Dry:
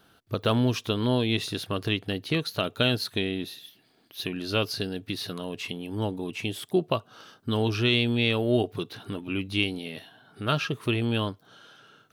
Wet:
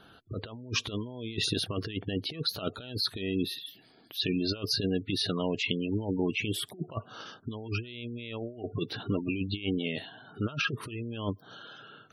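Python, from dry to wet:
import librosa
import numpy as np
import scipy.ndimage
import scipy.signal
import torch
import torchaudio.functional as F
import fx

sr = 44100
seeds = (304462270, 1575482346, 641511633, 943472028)

y = fx.over_compress(x, sr, threshold_db=-31.0, ratio=-0.5)
y = fx.spec_gate(y, sr, threshold_db=-20, keep='strong')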